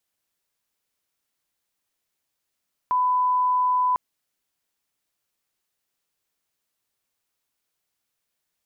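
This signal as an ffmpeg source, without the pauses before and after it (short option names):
-f lavfi -i "sine=f=1000:d=1.05:r=44100,volume=0.06dB"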